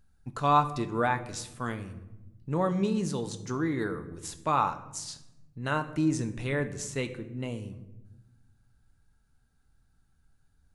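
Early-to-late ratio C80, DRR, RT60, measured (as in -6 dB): 15.5 dB, 7.5 dB, 1.0 s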